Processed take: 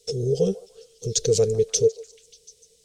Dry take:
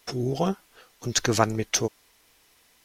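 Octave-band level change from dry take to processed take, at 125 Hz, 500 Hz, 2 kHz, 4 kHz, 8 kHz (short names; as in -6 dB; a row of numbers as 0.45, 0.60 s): +2.0 dB, +8.0 dB, under -15 dB, -1.0 dB, +2.0 dB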